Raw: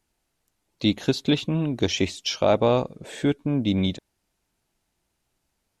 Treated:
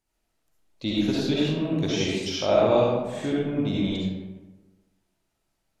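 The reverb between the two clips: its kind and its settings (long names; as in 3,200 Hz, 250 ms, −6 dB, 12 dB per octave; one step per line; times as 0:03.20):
comb and all-pass reverb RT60 1.2 s, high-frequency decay 0.55×, pre-delay 25 ms, DRR −6.5 dB
level −8 dB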